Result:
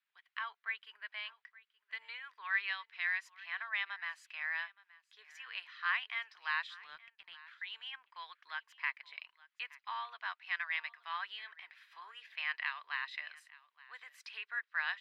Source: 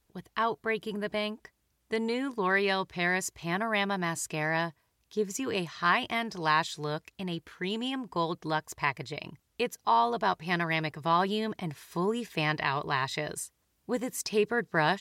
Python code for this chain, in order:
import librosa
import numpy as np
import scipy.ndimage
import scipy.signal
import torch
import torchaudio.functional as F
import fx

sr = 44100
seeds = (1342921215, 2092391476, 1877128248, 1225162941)

p1 = scipy.signal.sosfilt(scipy.signal.butter(4, 1500.0, 'highpass', fs=sr, output='sos'), x)
p2 = fx.power_curve(p1, sr, exponent=1.4, at=(6.84, 7.48))
p3 = fx.air_absorb(p2, sr, metres=400.0)
y = p3 + fx.echo_single(p3, sr, ms=872, db=-21.0, dry=0)